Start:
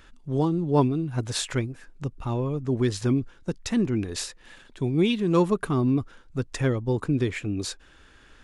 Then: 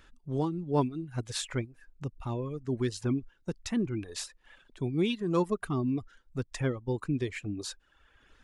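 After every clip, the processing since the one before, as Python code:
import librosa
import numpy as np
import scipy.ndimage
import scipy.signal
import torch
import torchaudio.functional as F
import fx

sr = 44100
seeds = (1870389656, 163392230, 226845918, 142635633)

y = fx.dereverb_blind(x, sr, rt60_s=0.95)
y = F.gain(torch.from_numpy(y), -5.5).numpy()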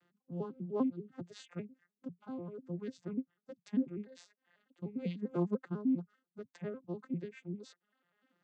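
y = fx.vocoder_arp(x, sr, chord='minor triad', root=53, every_ms=99)
y = F.gain(torch.from_numpy(y), -6.0).numpy()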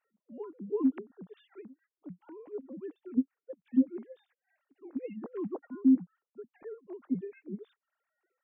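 y = fx.sine_speech(x, sr)
y = F.gain(torch.from_numpy(y), 5.0).numpy()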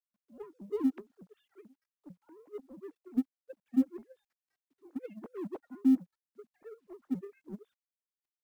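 y = fx.law_mismatch(x, sr, coded='A')
y = F.gain(torch.from_numpy(y), -1.5).numpy()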